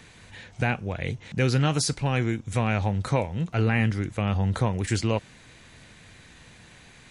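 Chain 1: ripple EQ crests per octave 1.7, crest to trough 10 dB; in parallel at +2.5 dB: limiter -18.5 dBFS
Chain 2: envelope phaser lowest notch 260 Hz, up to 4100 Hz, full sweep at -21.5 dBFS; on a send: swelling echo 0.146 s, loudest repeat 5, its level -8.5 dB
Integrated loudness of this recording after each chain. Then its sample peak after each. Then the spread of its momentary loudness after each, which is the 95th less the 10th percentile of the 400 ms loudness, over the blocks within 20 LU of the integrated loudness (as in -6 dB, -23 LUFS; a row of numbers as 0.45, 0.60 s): -20.0, -25.0 LUFS; -5.5, -8.5 dBFS; 7, 8 LU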